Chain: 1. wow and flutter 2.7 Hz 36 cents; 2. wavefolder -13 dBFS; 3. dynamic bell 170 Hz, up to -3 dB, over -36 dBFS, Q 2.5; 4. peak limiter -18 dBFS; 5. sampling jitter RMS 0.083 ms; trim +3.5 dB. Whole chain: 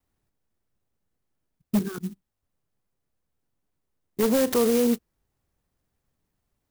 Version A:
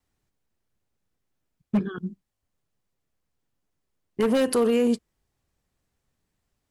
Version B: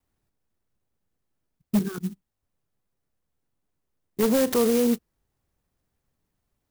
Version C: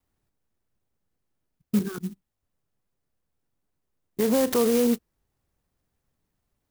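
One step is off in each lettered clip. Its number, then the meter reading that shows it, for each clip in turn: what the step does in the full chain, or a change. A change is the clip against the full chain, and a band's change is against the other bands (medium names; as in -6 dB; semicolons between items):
5, 8 kHz band -4.0 dB; 3, momentary loudness spread change -2 LU; 2, distortion -14 dB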